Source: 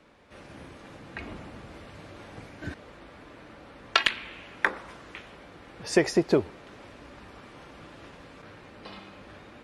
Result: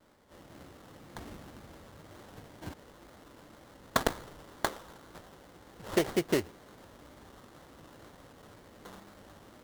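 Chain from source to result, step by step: sample-rate reducer 2500 Hz, jitter 20%; vibrato 2 Hz 66 cents; gain -6 dB

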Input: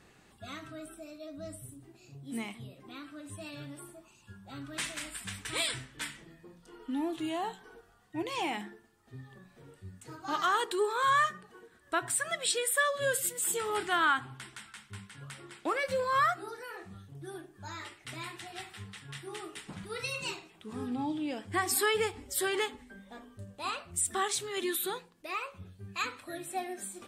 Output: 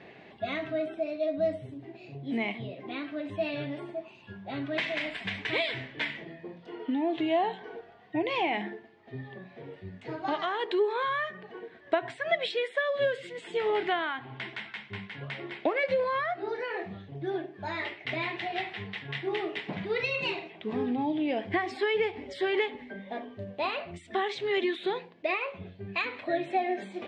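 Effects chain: compressor, threshold -36 dBFS, peak gain reduction 13 dB; speaker cabinet 140–3600 Hz, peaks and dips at 410 Hz +4 dB, 650 Hz +9 dB, 1300 Hz -10 dB, 2100 Hz +6 dB; gain +9 dB

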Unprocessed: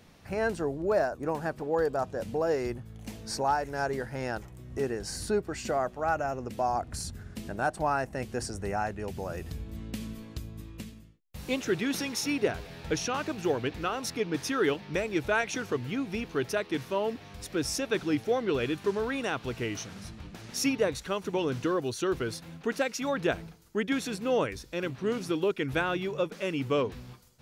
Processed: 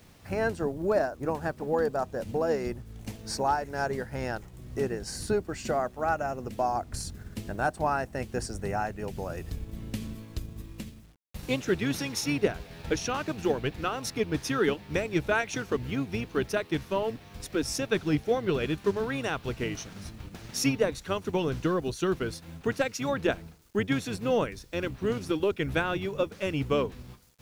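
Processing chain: octaver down 1 oct, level -4 dB; requantised 10-bit, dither none; transient shaper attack +2 dB, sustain -3 dB

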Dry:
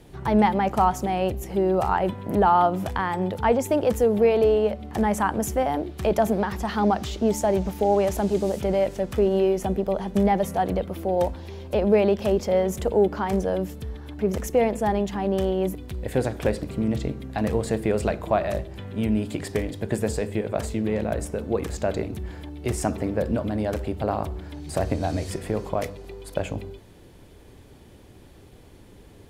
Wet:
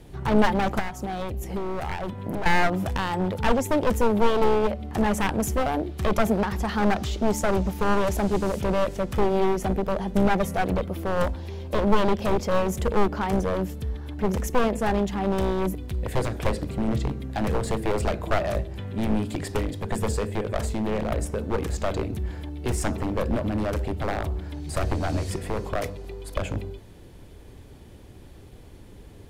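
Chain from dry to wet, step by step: one-sided fold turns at -21.5 dBFS; low shelf 110 Hz +6 dB; 0.79–2.46 compressor 6:1, threshold -26 dBFS, peak gain reduction 11 dB

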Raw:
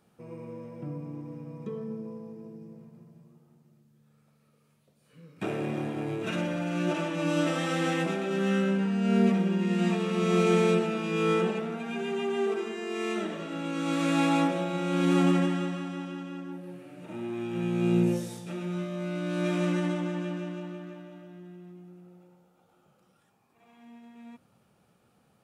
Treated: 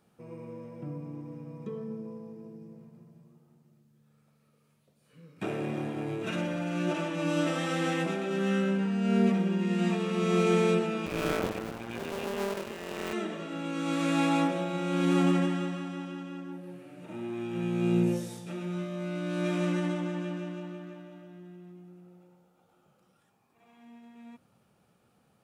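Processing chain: 11.06–13.13 cycle switcher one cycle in 2, muted; gain -1.5 dB

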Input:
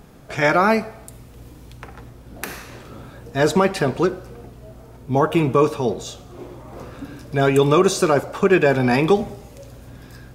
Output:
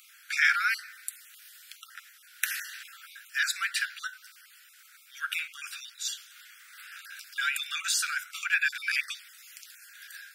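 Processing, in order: random spectral dropouts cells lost 20%; high shelf 12000 Hz +5.5 dB; notch 6500 Hz, Q 20; in parallel at +3 dB: compressor, threshold -28 dBFS, peak gain reduction 17 dB; on the sum: steep high-pass 1400 Hz 96 dB/oct; gain -3.5 dB

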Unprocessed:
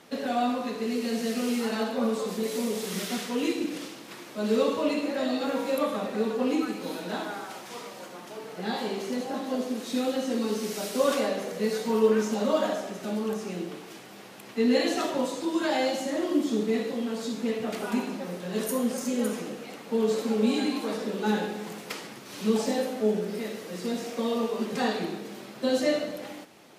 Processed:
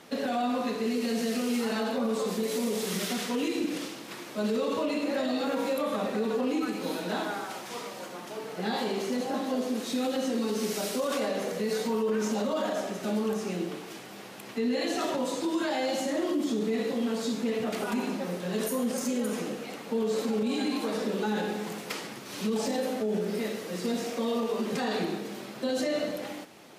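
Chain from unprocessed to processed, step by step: limiter -23 dBFS, peak gain reduction 12 dB; gain +2 dB

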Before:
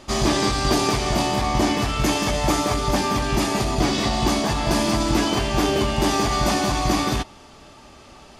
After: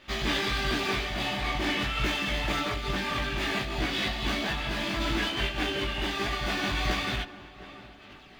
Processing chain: median filter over 5 samples; band shelf 2400 Hz +11 dB; in parallel at -10 dB: wavefolder -15 dBFS; on the sum: chorus voices 4, 1.4 Hz, delay 18 ms, depth 3.1 ms; on a send: tape echo 0.706 s, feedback 48%, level -13 dB, low-pass 1200 Hz; on the sum: noise-modulated level, depth 60%; gain -7.5 dB

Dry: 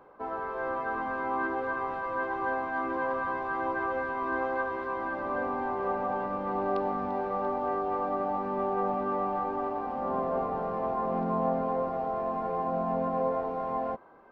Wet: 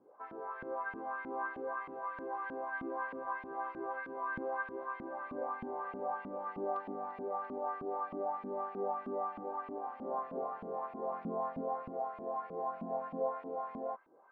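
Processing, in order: LFO band-pass saw up 3.2 Hz 220–2700 Hz; gain -2 dB

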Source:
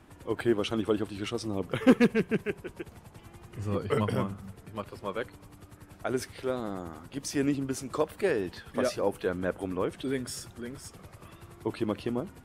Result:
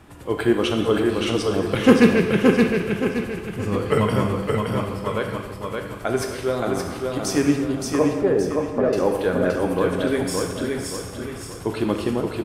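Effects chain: 7.56–8.93 LPF 1000 Hz 12 dB/oct; feedback echo 0.571 s, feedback 40%, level -3.5 dB; non-linear reverb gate 0.37 s falling, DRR 3 dB; gain +7 dB

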